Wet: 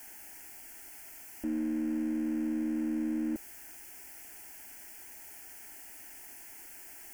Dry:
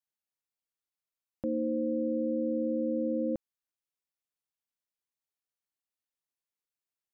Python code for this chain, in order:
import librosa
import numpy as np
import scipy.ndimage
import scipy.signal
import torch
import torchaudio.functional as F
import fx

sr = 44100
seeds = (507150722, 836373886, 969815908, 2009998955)

y = x + 0.5 * 10.0 ** (-38.0 / 20.0) * np.sign(x)
y = fx.fixed_phaser(y, sr, hz=770.0, stages=8)